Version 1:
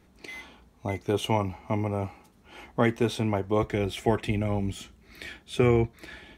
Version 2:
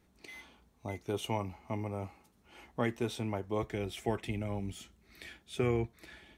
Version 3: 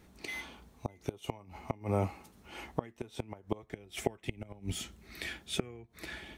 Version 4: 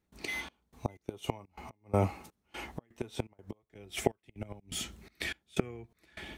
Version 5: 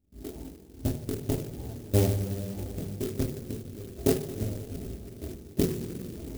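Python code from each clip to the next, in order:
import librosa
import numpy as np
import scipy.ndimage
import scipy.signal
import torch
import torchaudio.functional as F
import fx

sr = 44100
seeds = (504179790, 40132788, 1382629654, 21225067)

y1 = fx.high_shelf(x, sr, hz=5300.0, db=4.5)
y1 = y1 * librosa.db_to_amplitude(-9.0)
y2 = fx.gate_flip(y1, sr, shuts_db=-26.0, range_db=-27)
y2 = y2 * librosa.db_to_amplitude(9.0)
y3 = fx.step_gate(y2, sr, bpm=124, pattern='.xxx..xx.xxx.x.', floor_db=-24.0, edge_ms=4.5)
y3 = y3 * librosa.db_to_amplitude(3.5)
y4 = scipy.ndimage.gaussian_filter1d(y3, 18.0, mode='constant')
y4 = fx.rev_double_slope(y4, sr, seeds[0], early_s=0.3, late_s=3.9, knee_db=-18, drr_db=-7.0)
y4 = fx.clock_jitter(y4, sr, seeds[1], jitter_ms=0.12)
y4 = y4 * librosa.db_to_amplitude(4.5)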